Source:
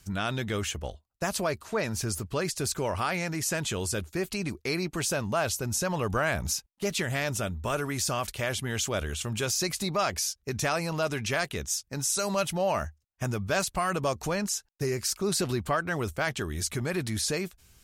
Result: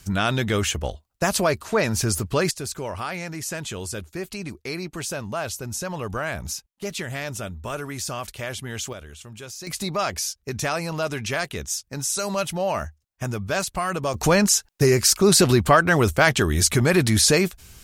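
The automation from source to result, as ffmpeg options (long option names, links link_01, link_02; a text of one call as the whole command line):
ffmpeg -i in.wav -af "asetnsamples=nb_out_samples=441:pad=0,asendcmd='2.51 volume volume -1dB;8.93 volume volume -9dB;9.67 volume volume 2.5dB;14.14 volume volume 12dB',volume=8dB" out.wav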